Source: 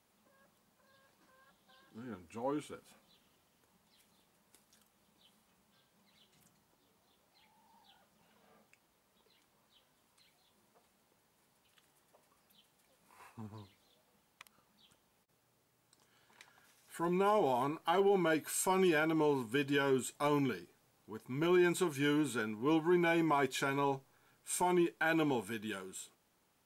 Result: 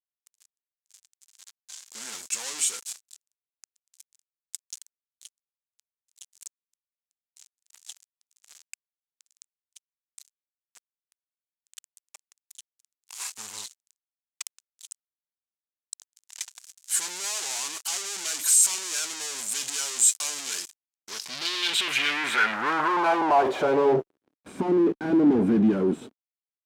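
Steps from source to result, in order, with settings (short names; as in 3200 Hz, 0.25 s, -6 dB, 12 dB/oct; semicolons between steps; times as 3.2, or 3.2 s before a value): fuzz box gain 57 dB, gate -60 dBFS; band-pass sweep 7200 Hz -> 260 Hz, 20.9–24.43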